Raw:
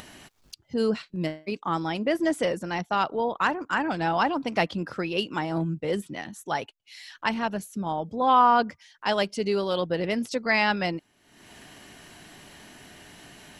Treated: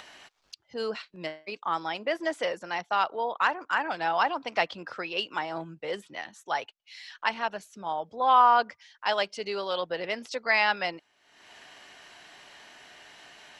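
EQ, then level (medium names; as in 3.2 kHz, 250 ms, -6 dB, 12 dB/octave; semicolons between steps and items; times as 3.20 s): three-band isolator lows -17 dB, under 490 Hz, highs -17 dB, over 6.8 kHz; 0.0 dB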